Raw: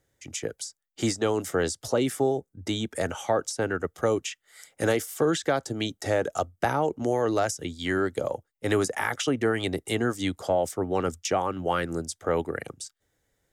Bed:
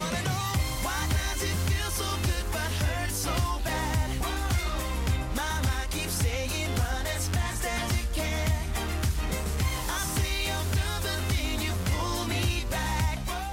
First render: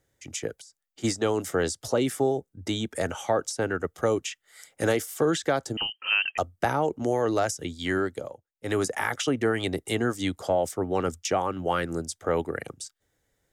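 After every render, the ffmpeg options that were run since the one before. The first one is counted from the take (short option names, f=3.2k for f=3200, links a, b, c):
-filter_complex "[0:a]asplit=3[a][b][c];[a]afade=t=out:st=0.6:d=0.02[d];[b]acompressor=threshold=-45dB:ratio=10:attack=3.2:release=140:knee=1:detection=peak,afade=t=in:st=0.6:d=0.02,afade=t=out:st=1.03:d=0.02[e];[c]afade=t=in:st=1.03:d=0.02[f];[d][e][f]amix=inputs=3:normalize=0,asettb=1/sr,asplit=3[g][h][i];[g]atrim=end=5.774[j];[h]atrim=start=5.77:end=6.38,asetpts=PTS-STARTPTS,afade=t=in:d=0.004:c=qsin,afade=t=out:st=0.606:d=0.004:c=qsin,lowpass=f=2.7k:t=q:w=0.5098,lowpass=f=2.7k:t=q:w=0.6013,lowpass=f=2.7k:t=q:w=0.9,lowpass=f=2.7k:t=q:w=2.563,afreqshift=-3200[k];[i]atrim=start=6.376[l];[j][k]acrossfade=d=0.004:c1=hsin:c2=qsin[m];[m][l]acrossfade=d=0.004:c1=qsin:c2=hsin,asplit=3[n][o][p];[n]atrim=end=8.35,asetpts=PTS-STARTPTS,afade=t=out:st=7.97:d=0.38:silence=0.199526[q];[o]atrim=start=8.35:end=8.49,asetpts=PTS-STARTPTS,volume=-14dB[r];[p]atrim=start=8.49,asetpts=PTS-STARTPTS,afade=t=in:d=0.38:silence=0.199526[s];[q][r][s]concat=n=3:v=0:a=1"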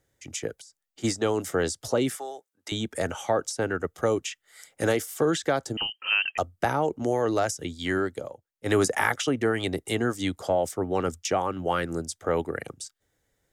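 -filter_complex "[0:a]asettb=1/sr,asplit=3[a][b][c];[a]atrim=end=2.164[d];[b]atrim=start=2.16:end=2.72,asetpts=PTS-STARTPTS,afade=t=in:d=0.004:c=qsin,afade=t=out:st=0.556:d=0.004:c=qsin,highpass=980[e];[c]atrim=start=2.716[f];[d][e]acrossfade=d=0.004:c1=hsin:c2=qsin[g];[g][f]acrossfade=d=0.004:c1=qsin:c2=hsin,asplit=3[h][i][j];[h]atrim=end=8.662[k];[i]atrim=start=8.658:end=9.122,asetpts=PTS-STARTPTS,volume=4dB[l];[j]atrim=start=9.118[m];[k][l]acrossfade=d=0.004:c1=hsin:c2=hsin[n];[n][m]acrossfade=d=0.004:c1=hsin:c2=hsin"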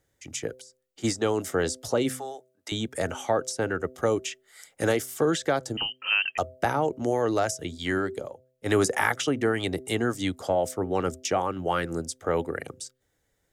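-af "bandreject=f=128.5:t=h:w=4,bandreject=f=257:t=h:w=4,bandreject=f=385.5:t=h:w=4,bandreject=f=514:t=h:w=4,bandreject=f=642.5:t=h:w=4"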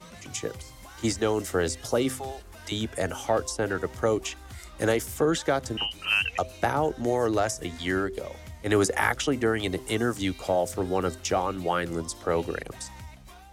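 -filter_complex "[1:a]volume=-16.5dB[a];[0:a][a]amix=inputs=2:normalize=0"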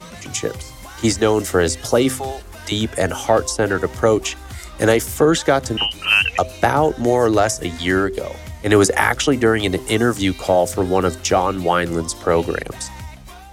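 -af "volume=9.5dB,alimiter=limit=-1dB:level=0:latency=1"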